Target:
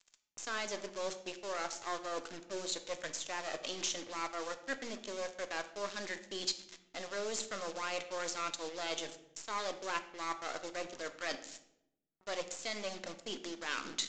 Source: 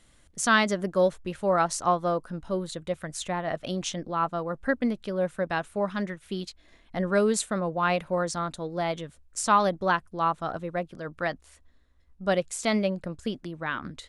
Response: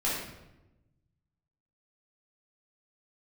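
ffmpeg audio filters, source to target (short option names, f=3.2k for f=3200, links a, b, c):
-filter_complex "[0:a]aeval=exprs='if(lt(val(0),0),0.251*val(0),val(0))':c=same,deesser=0.9,bandreject=f=60:t=h:w=6,bandreject=f=120:t=h:w=6,bandreject=f=180:t=h:w=6,bandreject=f=240:t=h:w=6,areverse,acompressor=threshold=-43dB:ratio=4,areverse,lowshelf=f=200:t=q:w=1.5:g=-13,acrusher=bits=8:mix=0:aa=0.5,crystalizer=i=7.5:c=0,asplit=2[a][b];[1:a]atrim=start_sample=2205,asetrate=57330,aresample=44100[c];[b][c]afir=irnorm=-1:irlink=0,volume=-13.5dB[d];[a][d]amix=inputs=2:normalize=0,aresample=16000,aresample=44100"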